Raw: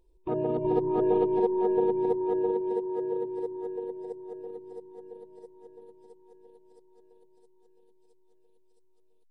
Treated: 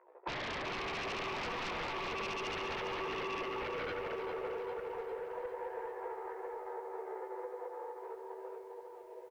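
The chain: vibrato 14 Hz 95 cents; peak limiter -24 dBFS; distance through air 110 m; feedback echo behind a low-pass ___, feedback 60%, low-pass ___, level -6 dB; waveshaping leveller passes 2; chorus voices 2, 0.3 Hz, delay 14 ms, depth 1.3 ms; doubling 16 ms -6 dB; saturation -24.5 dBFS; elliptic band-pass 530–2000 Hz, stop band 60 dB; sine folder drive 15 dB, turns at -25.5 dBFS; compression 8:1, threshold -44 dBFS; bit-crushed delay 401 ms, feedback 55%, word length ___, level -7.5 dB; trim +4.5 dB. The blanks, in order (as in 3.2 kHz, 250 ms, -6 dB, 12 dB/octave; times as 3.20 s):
83 ms, 750 Hz, 12-bit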